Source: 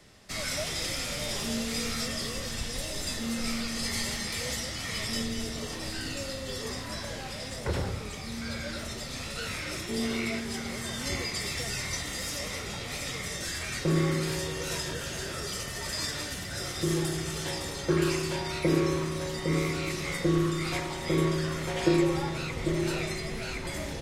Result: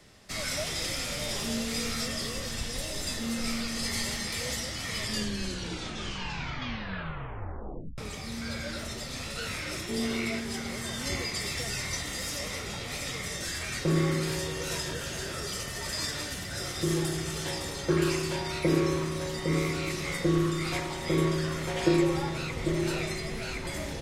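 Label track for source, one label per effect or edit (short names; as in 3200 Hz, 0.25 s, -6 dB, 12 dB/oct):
4.980000	4.980000	tape stop 3.00 s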